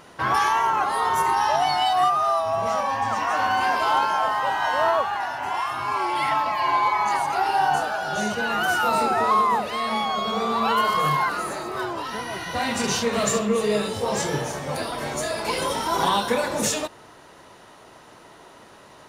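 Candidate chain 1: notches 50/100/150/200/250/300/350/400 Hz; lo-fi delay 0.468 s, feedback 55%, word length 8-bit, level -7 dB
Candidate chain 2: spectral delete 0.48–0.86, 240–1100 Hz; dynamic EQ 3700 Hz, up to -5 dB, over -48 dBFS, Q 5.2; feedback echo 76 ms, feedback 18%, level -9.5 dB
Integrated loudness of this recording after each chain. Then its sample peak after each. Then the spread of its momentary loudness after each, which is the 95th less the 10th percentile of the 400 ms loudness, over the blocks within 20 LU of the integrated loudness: -22.0, -22.5 LUFS; -7.5, -8.5 dBFS; 7, 7 LU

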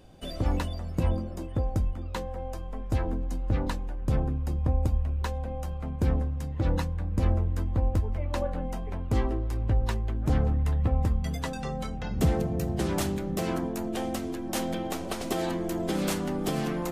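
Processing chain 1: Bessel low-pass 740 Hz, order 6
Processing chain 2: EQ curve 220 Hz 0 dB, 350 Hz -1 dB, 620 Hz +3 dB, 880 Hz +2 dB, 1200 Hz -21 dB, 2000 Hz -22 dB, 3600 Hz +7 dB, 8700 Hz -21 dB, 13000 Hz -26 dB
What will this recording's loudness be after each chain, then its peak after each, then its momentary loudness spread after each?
-30.5, -30.0 LUFS; -15.0, -14.5 dBFS; 9, 7 LU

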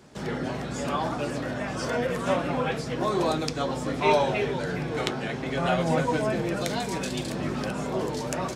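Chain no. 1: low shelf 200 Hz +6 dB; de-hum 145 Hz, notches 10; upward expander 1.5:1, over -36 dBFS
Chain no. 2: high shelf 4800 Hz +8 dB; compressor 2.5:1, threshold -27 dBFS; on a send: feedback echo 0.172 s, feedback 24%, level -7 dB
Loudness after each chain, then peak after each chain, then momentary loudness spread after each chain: -30.0, -29.5 LUFS; -9.0, -7.0 dBFS; 10, 3 LU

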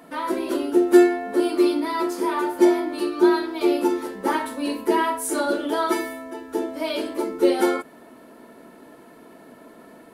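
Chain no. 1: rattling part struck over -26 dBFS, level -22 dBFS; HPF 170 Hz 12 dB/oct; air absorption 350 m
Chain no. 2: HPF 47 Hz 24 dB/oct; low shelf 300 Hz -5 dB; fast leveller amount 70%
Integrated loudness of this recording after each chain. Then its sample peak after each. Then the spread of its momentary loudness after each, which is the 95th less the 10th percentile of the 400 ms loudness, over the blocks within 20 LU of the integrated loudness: -23.5, -16.0 LUFS; -3.5, -3.0 dBFS; 10, 8 LU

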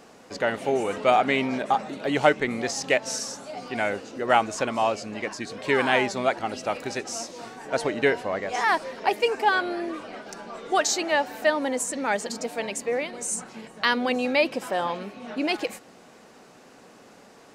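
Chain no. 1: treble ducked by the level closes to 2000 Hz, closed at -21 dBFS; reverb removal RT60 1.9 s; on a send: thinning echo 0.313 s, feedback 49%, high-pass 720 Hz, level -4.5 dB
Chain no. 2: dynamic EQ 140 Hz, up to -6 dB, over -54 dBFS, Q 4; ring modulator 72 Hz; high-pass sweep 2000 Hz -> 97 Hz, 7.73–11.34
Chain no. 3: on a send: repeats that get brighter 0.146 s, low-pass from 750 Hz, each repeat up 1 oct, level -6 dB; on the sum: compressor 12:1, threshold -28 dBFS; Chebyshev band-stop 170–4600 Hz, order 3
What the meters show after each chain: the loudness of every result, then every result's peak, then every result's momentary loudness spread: -27.0, -28.0, -43.0 LUFS; -6.0, -5.0, -22.0 dBFS; 12, 14, 16 LU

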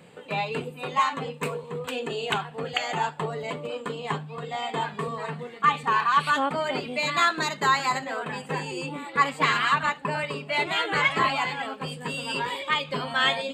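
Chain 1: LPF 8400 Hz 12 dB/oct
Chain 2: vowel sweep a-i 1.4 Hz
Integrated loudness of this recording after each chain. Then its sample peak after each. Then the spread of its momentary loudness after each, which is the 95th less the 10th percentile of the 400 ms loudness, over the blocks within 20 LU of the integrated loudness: -26.5, -38.5 LUFS; -9.0, -19.0 dBFS; 11, 12 LU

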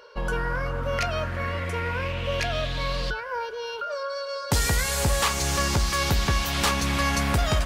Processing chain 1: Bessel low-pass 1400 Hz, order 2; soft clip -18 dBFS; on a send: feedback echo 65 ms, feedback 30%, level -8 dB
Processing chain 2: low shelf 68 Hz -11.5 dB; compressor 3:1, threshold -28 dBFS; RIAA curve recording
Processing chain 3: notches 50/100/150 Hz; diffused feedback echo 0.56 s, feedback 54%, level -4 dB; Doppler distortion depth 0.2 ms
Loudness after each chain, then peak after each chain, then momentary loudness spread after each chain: -29.0, -25.0, -24.0 LUFS; -16.0, -6.0, -9.0 dBFS; 5, 12, 7 LU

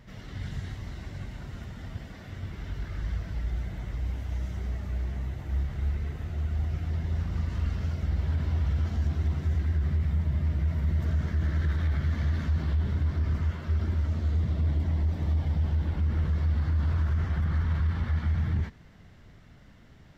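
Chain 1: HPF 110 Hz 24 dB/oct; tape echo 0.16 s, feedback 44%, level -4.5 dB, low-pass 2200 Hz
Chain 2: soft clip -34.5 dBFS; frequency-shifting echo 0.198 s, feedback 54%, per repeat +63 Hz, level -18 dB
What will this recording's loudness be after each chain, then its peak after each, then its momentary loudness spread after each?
-37.0, -39.0 LUFS; -22.0, -31.5 dBFS; 9, 5 LU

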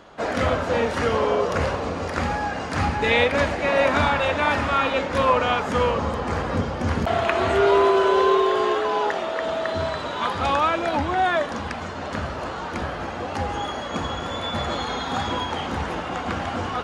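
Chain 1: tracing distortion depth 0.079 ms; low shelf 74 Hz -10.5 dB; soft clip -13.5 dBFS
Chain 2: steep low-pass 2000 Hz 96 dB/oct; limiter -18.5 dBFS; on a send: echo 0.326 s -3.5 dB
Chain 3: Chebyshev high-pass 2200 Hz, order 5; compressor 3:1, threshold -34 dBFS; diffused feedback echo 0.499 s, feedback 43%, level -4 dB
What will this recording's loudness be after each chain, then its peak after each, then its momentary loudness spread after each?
-24.5, -26.0, -34.5 LUFS; -13.5, -14.0, -18.0 dBFS; 8, 4, 6 LU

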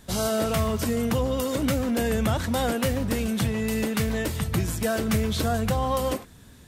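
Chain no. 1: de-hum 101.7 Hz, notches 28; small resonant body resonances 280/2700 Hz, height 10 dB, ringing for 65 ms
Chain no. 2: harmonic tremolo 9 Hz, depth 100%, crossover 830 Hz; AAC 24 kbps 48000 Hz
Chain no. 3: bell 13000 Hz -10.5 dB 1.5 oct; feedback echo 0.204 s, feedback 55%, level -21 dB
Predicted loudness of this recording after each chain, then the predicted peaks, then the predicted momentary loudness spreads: -24.0, -30.0, -26.0 LUFS; -8.5, -14.5, -13.5 dBFS; 4, 2, 2 LU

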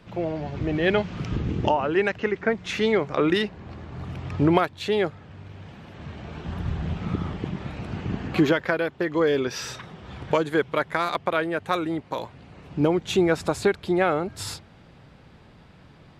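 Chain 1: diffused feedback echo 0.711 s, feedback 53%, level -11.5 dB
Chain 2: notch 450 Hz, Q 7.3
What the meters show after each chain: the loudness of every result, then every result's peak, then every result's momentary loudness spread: -25.5, -26.0 LUFS; -6.5, -6.0 dBFS; 13, 17 LU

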